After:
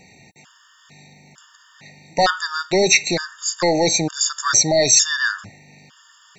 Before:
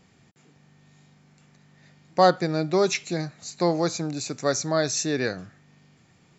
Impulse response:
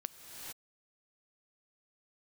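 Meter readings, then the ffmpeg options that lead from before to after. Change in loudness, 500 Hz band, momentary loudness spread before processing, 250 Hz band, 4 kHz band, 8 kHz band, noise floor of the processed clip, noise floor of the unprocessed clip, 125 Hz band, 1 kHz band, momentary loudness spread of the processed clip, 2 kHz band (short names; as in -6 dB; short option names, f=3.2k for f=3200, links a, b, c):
+7.5 dB, +3.0 dB, 11 LU, +1.5 dB, +12.5 dB, n/a, -53 dBFS, -59 dBFS, 0.0 dB, +3.0 dB, 11 LU, +11.5 dB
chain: -af "apsyclip=21.5dB,tiltshelf=f=630:g=-6,afftfilt=real='re*gt(sin(2*PI*1.1*pts/sr)*(1-2*mod(floor(b*sr/1024/920),2)),0)':imag='im*gt(sin(2*PI*1.1*pts/sr)*(1-2*mod(floor(b*sr/1024/920),2)),0)':win_size=1024:overlap=0.75,volume=-9.5dB"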